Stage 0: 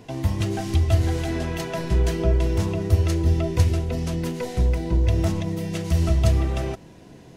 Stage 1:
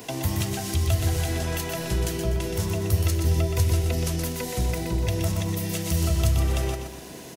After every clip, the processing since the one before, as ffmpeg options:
ffmpeg -i in.wav -filter_complex "[0:a]aemphasis=mode=production:type=bsi,acrossover=split=170[link_01][link_02];[link_02]acompressor=threshold=-36dB:ratio=10[link_03];[link_01][link_03]amix=inputs=2:normalize=0,aecho=1:1:123|246|369|492|615:0.501|0.19|0.0724|0.0275|0.0105,volume=7dB" out.wav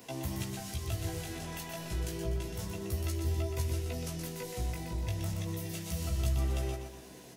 ffmpeg -i in.wav -af "flanger=delay=15:depth=4.3:speed=0.3,volume=-7.5dB" out.wav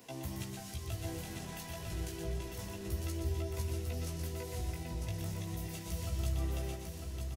ffmpeg -i in.wav -af "aecho=1:1:949:0.531,volume=-4.5dB" out.wav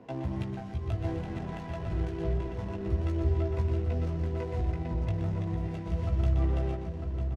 ffmpeg -i in.wav -af "adynamicsmooth=sensitivity=8:basefreq=970,volume=8.5dB" out.wav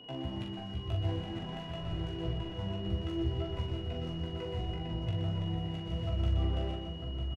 ffmpeg -i in.wav -filter_complex "[0:a]aeval=exprs='val(0)+0.00501*sin(2*PI*2900*n/s)':channel_layout=same,flanger=delay=6.8:depth=3.6:regen=67:speed=0.54:shape=sinusoidal,asplit=2[link_01][link_02];[link_02]adelay=42,volume=-5dB[link_03];[link_01][link_03]amix=inputs=2:normalize=0" out.wav

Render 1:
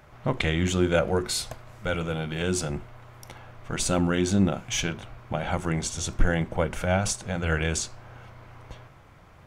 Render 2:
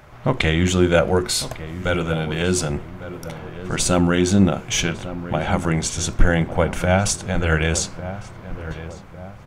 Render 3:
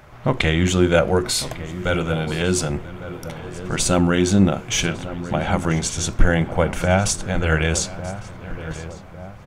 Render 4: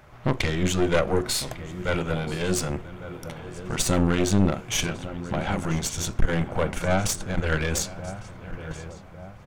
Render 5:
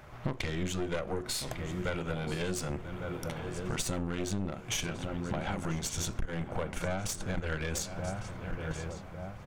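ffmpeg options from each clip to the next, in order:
ffmpeg -i in.wav -filter_complex "[0:a]asplit=2[link_01][link_02];[link_02]adelay=1152,lowpass=frequency=1300:poles=1,volume=-12.5dB,asplit=2[link_03][link_04];[link_04]adelay=1152,lowpass=frequency=1300:poles=1,volume=0.47,asplit=2[link_05][link_06];[link_06]adelay=1152,lowpass=frequency=1300:poles=1,volume=0.47,asplit=2[link_07][link_08];[link_08]adelay=1152,lowpass=frequency=1300:poles=1,volume=0.47,asplit=2[link_09][link_10];[link_10]adelay=1152,lowpass=frequency=1300:poles=1,volume=0.47[link_11];[link_01][link_03][link_05][link_07][link_09][link_11]amix=inputs=6:normalize=0,volume=6.5dB" out.wav
ffmpeg -i in.wav -af "aecho=1:1:982:0.0944" out.wav
ffmpeg -i in.wav -af "aeval=exprs='(tanh(5.01*val(0)+0.8)-tanh(0.8))/5.01':channel_layout=same" out.wav
ffmpeg -i in.wav -af "acompressor=threshold=-30dB:ratio=6" out.wav

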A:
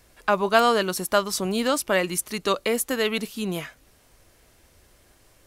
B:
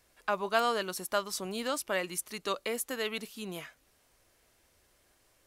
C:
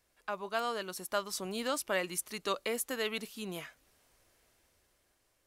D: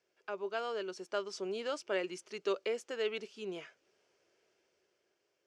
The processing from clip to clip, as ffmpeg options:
ffmpeg -i in.wav -af "lowshelf=frequency=290:gain=-7,volume=-8.5dB" out.wav
ffmpeg -i in.wav -af "dynaudnorm=framelen=200:gausssize=11:maxgain=6.5dB,volume=-7dB" out.wav
ffmpeg -i in.wav -af "highpass=240,equalizer=frequency=260:width_type=q:width=4:gain=-8,equalizer=frequency=390:width_type=q:width=4:gain=9,equalizer=frequency=780:width_type=q:width=4:gain=-4,equalizer=frequency=1100:width_type=q:width=4:gain=-7,equalizer=frequency=1900:width_type=q:width=4:gain=-5,equalizer=frequency=3900:width_type=q:width=4:gain=-9,lowpass=frequency=5800:width=0.5412,lowpass=frequency=5800:width=1.3066,volume=-1.5dB" out.wav

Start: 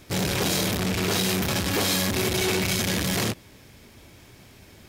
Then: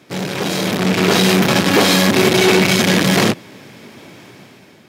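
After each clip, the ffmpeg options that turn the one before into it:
ffmpeg -i in.wav -af "highpass=frequency=140:width=0.5412,highpass=frequency=140:width=1.3066,highshelf=frequency=5700:gain=-11.5,dynaudnorm=framelen=310:gausssize=5:maxgain=10dB,volume=4dB" out.wav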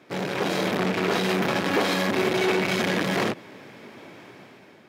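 ffmpeg -i in.wav -af "equalizer=frequency=3000:width=1.5:gain=-2,alimiter=limit=-8.5dB:level=0:latency=1:release=93,bass=frequency=250:gain=-7,treble=frequency=4000:gain=-10,volume=-3dB" out.wav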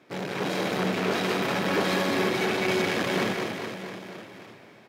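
ffmpeg -i in.wav -af "aecho=1:1:200|420|662|928.2|1221:0.631|0.398|0.251|0.158|0.1,volume=-4dB" out.wav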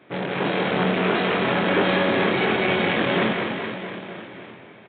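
ffmpeg -i in.wav -filter_complex "[0:a]asplit=2[link_01][link_02];[link_02]adelay=23,volume=-5dB[link_03];[link_01][link_03]amix=inputs=2:normalize=0,aresample=8000,aresample=44100,volume=4.5dB" out.wav

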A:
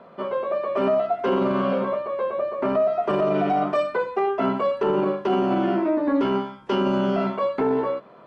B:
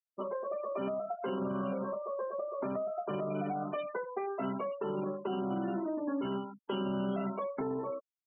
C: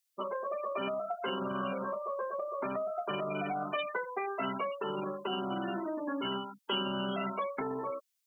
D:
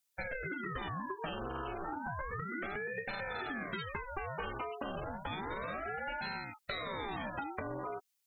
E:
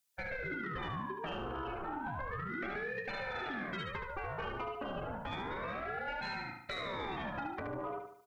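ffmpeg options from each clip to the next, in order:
ffmpeg -i in.wav -filter_complex "[0:a]afftfilt=real='re*gte(hypot(re,im),0.0398)':imag='im*gte(hypot(re,im),0.0398)':win_size=1024:overlap=0.75,acrossover=split=180|3000[link_01][link_02][link_03];[link_02]acompressor=threshold=-28dB:ratio=6[link_04];[link_01][link_04][link_03]amix=inputs=3:normalize=0,volume=-6dB" out.wav
ffmpeg -i in.wav -af "tiltshelf=frequency=1400:gain=-10,volume=6.5dB" out.wav
ffmpeg -i in.wav -af "acompressor=threshold=-37dB:ratio=6,aeval=exprs='val(0)*sin(2*PI*650*n/s+650*0.8/0.32*sin(2*PI*0.32*n/s))':channel_layout=same,volume=3.5dB" out.wav
ffmpeg -i in.wav -filter_complex "[0:a]asoftclip=type=tanh:threshold=-30dB,asplit=2[link_01][link_02];[link_02]aecho=0:1:73|146|219|292|365:0.501|0.221|0.097|0.0427|0.0188[link_03];[link_01][link_03]amix=inputs=2:normalize=0" out.wav

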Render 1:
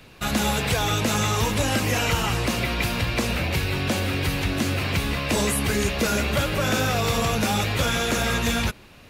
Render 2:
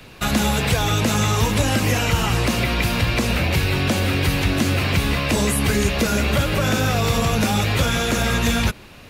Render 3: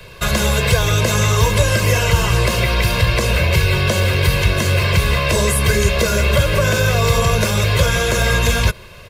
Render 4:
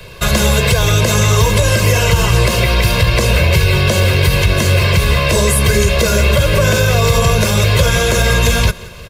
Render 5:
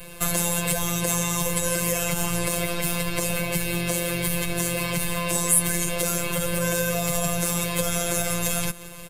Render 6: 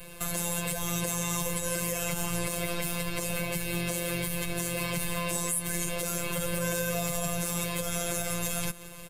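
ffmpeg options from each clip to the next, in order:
ffmpeg -i in.wav -filter_complex "[0:a]acrossover=split=260[link_01][link_02];[link_02]acompressor=threshold=-25dB:ratio=6[link_03];[link_01][link_03]amix=inputs=2:normalize=0,volume=5.5dB" out.wav
ffmpeg -i in.wav -af "aecho=1:1:1.9:0.85,volume=1.5dB" out.wav
ffmpeg -i in.wav -af "equalizer=frequency=1500:width_type=o:width=1.6:gain=-2.5,aecho=1:1:177|354|531|708:0.0794|0.0437|0.024|0.0132,alimiter=level_in=5.5dB:limit=-1dB:release=50:level=0:latency=1,volume=-1dB" out.wav
ffmpeg -i in.wav -af "afftfilt=real='hypot(re,im)*cos(PI*b)':imag='0':win_size=1024:overlap=0.75,acompressor=threshold=-27dB:ratio=1.5,highshelf=frequency=6700:width_type=q:width=1.5:gain=9.5,volume=-3dB" out.wav
ffmpeg -i in.wav -af "alimiter=limit=-8.5dB:level=0:latency=1:release=241,volume=-4.5dB" out.wav

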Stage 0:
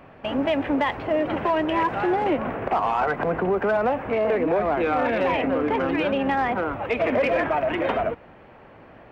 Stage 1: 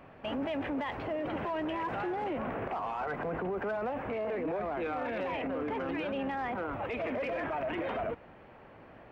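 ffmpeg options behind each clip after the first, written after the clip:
ffmpeg -i in.wav -af "alimiter=limit=-22dB:level=0:latency=1:release=14,volume=-5.5dB" out.wav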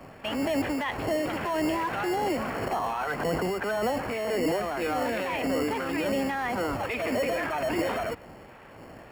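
ffmpeg -i in.wav -filter_complex "[0:a]acrossover=split=1100[link_01][link_02];[link_01]aeval=exprs='val(0)*(1-0.5/2+0.5/2*cos(2*PI*1.8*n/s))':channel_layout=same[link_03];[link_02]aeval=exprs='val(0)*(1-0.5/2-0.5/2*cos(2*PI*1.8*n/s))':channel_layout=same[link_04];[link_03][link_04]amix=inputs=2:normalize=0,acrossover=split=140|550[link_05][link_06][link_07];[link_06]acrusher=samples=18:mix=1:aa=0.000001[link_08];[link_05][link_08][link_07]amix=inputs=3:normalize=0,volume=8.5dB" out.wav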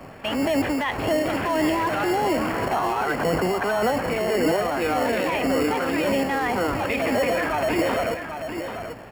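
ffmpeg -i in.wav -af "aecho=1:1:789:0.398,volume=5dB" out.wav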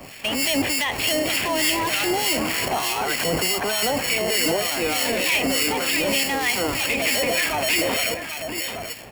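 ffmpeg -i in.wav -filter_complex "[0:a]aexciter=amount=4.4:drive=7:freq=2100,asoftclip=type=hard:threshold=-13.5dB,acrossover=split=1400[link_01][link_02];[link_01]aeval=exprs='val(0)*(1-0.7/2+0.7/2*cos(2*PI*3.3*n/s))':channel_layout=same[link_03];[link_02]aeval=exprs='val(0)*(1-0.7/2-0.7/2*cos(2*PI*3.3*n/s))':channel_layout=same[link_04];[link_03][link_04]amix=inputs=2:normalize=0,volume=1dB" out.wav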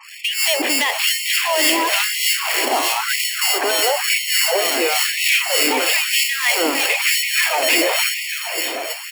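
ffmpeg -i in.wav -af "afftfilt=real='re*gte(hypot(re,im),0.00501)':imag='im*gte(hypot(re,im),0.00501)':win_size=1024:overlap=0.75,aecho=1:1:455|910|1365|1820|2275|2730:0.266|0.152|0.0864|0.0493|0.0281|0.016,afftfilt=real='re*gte(b*sr/1024,220*pow(1900/220,0.5+0.5*sin(2*PI*1*pts/sr)))':imag='im*gte(b*sr/1024,220*pow(1900/220,0.5+0.5*sin(2*PI*1*pts/sr)))':win_size=1024:overlap=0.75,volume=5dB" out.wav

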